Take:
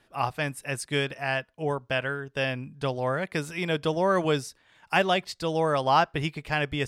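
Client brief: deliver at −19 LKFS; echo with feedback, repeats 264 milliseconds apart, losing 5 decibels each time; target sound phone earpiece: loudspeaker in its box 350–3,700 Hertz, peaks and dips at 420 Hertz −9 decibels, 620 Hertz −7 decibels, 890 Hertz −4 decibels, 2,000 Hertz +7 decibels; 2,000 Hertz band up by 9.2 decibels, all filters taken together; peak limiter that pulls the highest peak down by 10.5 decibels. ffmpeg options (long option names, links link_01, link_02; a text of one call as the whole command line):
ffmpeg -i in.wav -af "equalizer=frequency=2000:width_type=o:gain=8.5,alimiter=limit=-14dB:level=0:latency=1,highpass=350,equalizer=frequency=420:width_type=q:width=4:gain=-9,equalizer=frequency=620:width_type=q:width=4:gain=-7,equalizer=frequency=890:width_type=q:width=4:gain=-4,equalizer=frequency=2000:width_type=q:width=4:gain=7,lowpass=frequency=3700:width=0.5412,lowpass=frequency=3700:width=1.3066,aecho=1:1:264|528|792|1056|1320|1584|1848:0.562|0.315|0.176|0.0988|0.0553|0.031|0.0173,volume=6.5dB" out.wav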